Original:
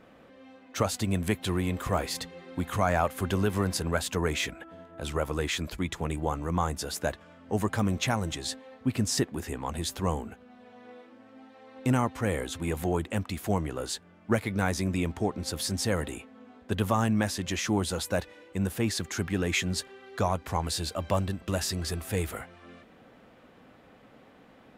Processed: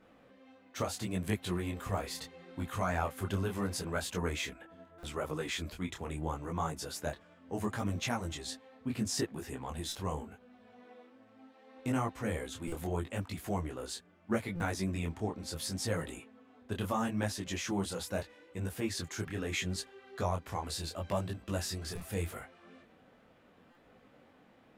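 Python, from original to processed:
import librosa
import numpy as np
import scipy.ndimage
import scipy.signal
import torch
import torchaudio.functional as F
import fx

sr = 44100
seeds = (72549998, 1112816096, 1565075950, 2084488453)

y = fx.buffer_glitch(x, sr, at_s=(4.98, 9.87, 12.67, 14.55, 21.95, 23.7), block=256, repeats=8)
y = fx.detune_double(y, sr, cents=26)
y = y * 10.0 ** (-3.0 / 20.0)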